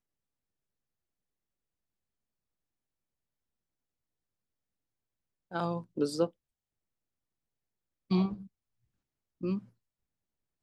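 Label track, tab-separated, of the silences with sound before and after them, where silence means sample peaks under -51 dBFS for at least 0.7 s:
6.300000	8.100000	silence
8.470000	9.410000	silence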